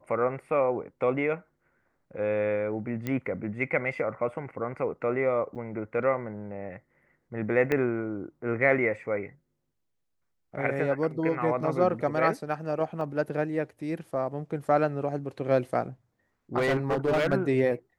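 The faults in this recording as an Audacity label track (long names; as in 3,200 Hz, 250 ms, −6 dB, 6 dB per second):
3.070000	3.070000	click −18 dBFS
5.550000	5.560000	drop-out 7.1 ms
7.720000	7.720000	click −15 dBFS
13.010000	13.010000	drop-out 2.1 ms
16.570000	17.340000	clipping −21 dBFS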